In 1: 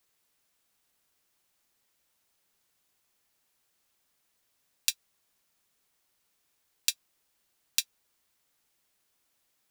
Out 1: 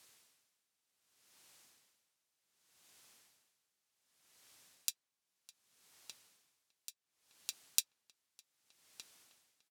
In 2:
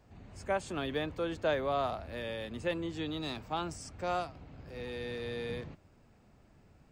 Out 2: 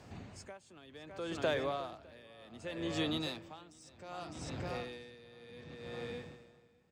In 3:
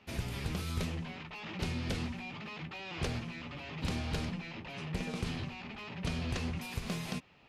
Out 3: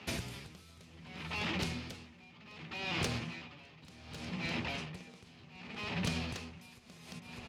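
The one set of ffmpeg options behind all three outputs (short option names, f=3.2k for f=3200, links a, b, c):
-filter_complex "[0:a]adynamicsmooth=sensitivity=3:basefreq=6k,highshelf=f=4.2k:g=12,acompressor=threshold=-43dB:ratio=3,highpass=86,highshelf=f=11k:g=11,asplit=2[a][b];[b]adelay=607,lowpass=f=3.9k:p=1,volume=-8dB,asplit=2[c][d];[d]adelay=607,lowpass=f=3.9k:p=1,volume=0.52,asplit=2[e][f];[f]adelay=607,lowpass=f=3.9k:p=1,volume=0.52,asplit=2[g][h];[h]adelay=607,lowpass=f=3.9k:p=1,volume=0.52,asplit=2[i][j];[j]adelay=607,lowpass=f=3.9k:p=1,volume=0.52,asplit=2[k][l];[l]adelay=607,lowpass=f=3.9k:p=1,volume=0.52[m];[a][c][e][g][i][k][m]amix=inputs=7:normalize=0,aeval=exprs='val(0)*pow(10,-22*(0.5-0.5*cos(2*PI*0.66*n/s))/20)':c=same,volume=9dB"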